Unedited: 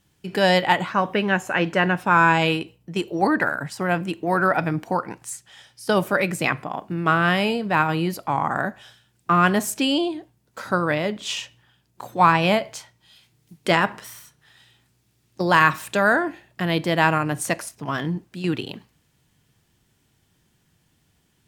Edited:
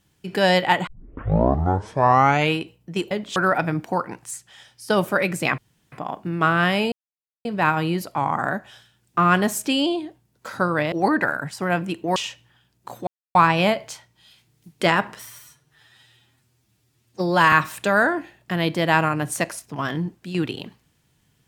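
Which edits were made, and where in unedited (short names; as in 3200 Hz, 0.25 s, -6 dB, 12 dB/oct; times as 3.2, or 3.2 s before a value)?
0.87 tape start 1.67 s
3.11–4.35 swap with 11.04–11.29
6.57 insert room tone 0.34 s
7.57 insert silence 0.53 s
12.2 insert silence 0.28 s
14.11–15.62 stretch 1.5×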